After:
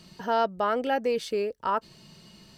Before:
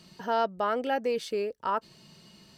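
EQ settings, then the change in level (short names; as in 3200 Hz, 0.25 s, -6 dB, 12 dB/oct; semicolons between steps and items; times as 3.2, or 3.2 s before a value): low shelf 67 Hz +8.5 dB; +2.0 dB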